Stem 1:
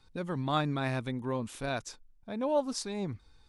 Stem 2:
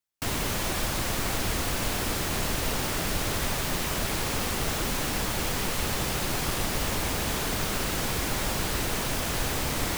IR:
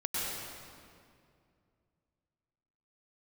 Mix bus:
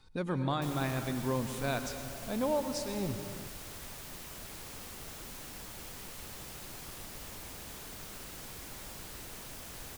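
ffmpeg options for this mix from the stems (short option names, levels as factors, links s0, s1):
-filter_complex "[0:a]alimiter=level_in=1.12:limit=0.0631:level=0:latency=1:release=430,volume=0.891,volume=1,asplit=2[s0][s1];[s1]volume=0.251[s2];[1:a]highshelf=f=5700:g=6.5,adelay=400,volume=0.112[s3];[2:a]atrim=start_sample=2205[s4];[s2][s4]afir=irnorm=-1:irlink=0[s5];[s0][s3][s5]amix=inputs=3:normalize=0"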